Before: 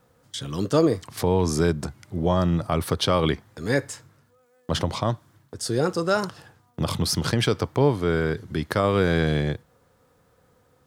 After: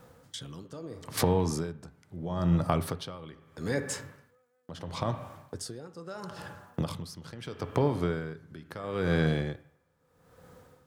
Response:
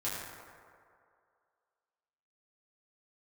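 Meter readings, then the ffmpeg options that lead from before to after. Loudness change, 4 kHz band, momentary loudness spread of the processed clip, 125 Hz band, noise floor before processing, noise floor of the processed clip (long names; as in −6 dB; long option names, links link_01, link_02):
−8.0 dB, −12.0 dB, 18 LU, −7.0 dB, −63 dBFS, −69 dBFS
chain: -filter_complex "[0:a]acompressor=threshold=-29dB:ratio=6,asplit=2[link_01][link_02];[1:a]atrim=start_sample=2205,asetrate=74970,aresample=44100,lowpass=2600[link_03];[link_02][link_03]afir=irnorm=-1:irlink=0,volume=-8.5dB[link_04];[link_01][link_04]amix=inputs=2:normalize=0,aeval=exprs='val(0)*pow(10,-20*(0.5-0.5*cos(2*PI*0.76*n/s))/20)':channel_layout=same,volume=5.5dB"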